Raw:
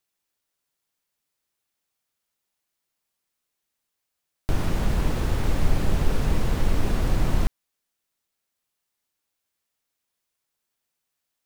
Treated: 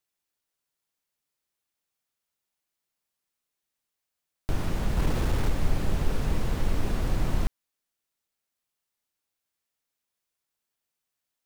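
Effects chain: 4.97–5.51 sample leveller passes 1; gain -4 dB

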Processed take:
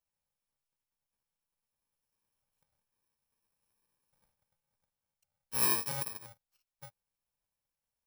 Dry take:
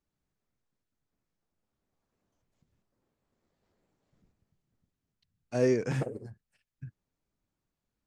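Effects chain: FFT order left unsorted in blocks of 64 samples; resonant low shelf 470 Hz -9 dB, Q 1.5; gain -2.5 dB

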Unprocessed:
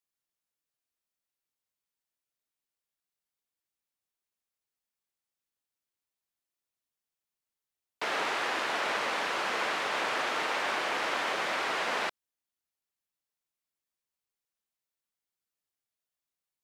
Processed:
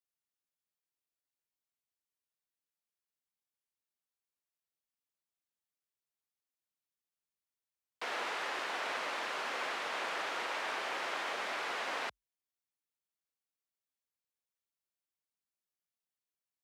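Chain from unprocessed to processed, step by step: frequency shift +45 Hz; gain -6.5 dB

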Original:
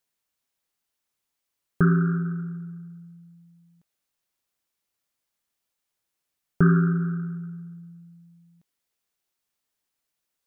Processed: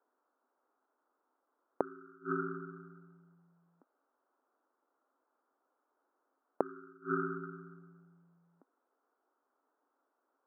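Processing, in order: Chebyshev band-pass 260–1400 Hz, order 4; flipped gate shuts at -28 dBFS, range -34 dB; gain +13 dB

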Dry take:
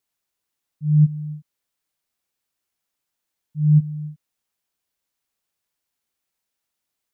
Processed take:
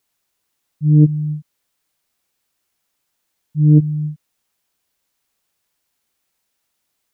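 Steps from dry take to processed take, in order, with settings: self-modulated delay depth 0.91 ms; in parallel at -2.5 dB: limiter -19 dBFS, peak gain reduction 11.5 dB; on the sum: gain +3.5 dB

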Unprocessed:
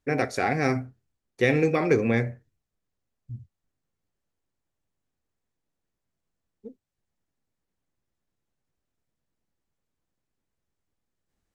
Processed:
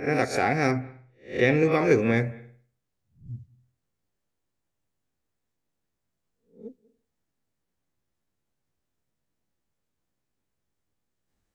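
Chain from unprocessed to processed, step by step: spectral swells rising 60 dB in 0.35 s; 0.71–1.72 air absorption 71 m; on a send: reverb, pre-delay 0.192 s, DRR 23 dB

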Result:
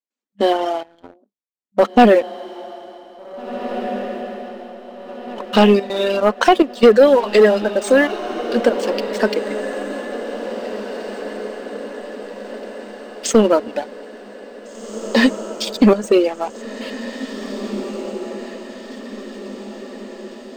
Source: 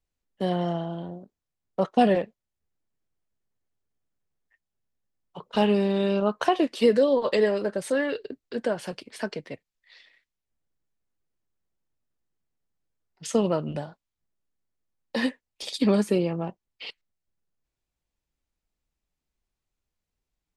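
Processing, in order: reverb removal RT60 1.8 s; 15.68–16.29 gate -31 dBFS, range -10 dB; FFT band-pass 200–8700 Hz; sample leveller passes 2; step gate ".xxxxxxx..xxxx" 145 bpm -12 dB; diffused feedback echo 1.9 s, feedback 56%, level -11 dB; gain +6 dB

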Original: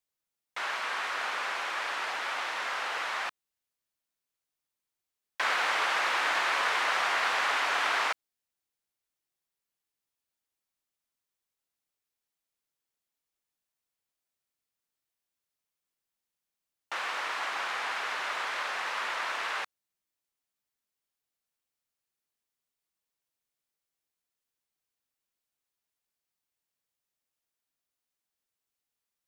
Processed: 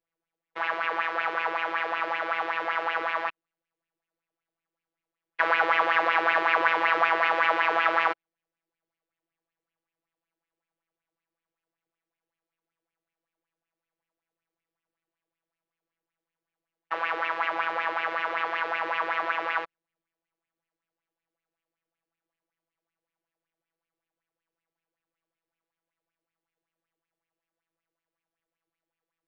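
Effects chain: robotiser 165 Hz; tape spacing loss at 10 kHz 37 dB; LFO bell 5.3 Hz 340–2700 Hz +13 dB; gain +7 dB

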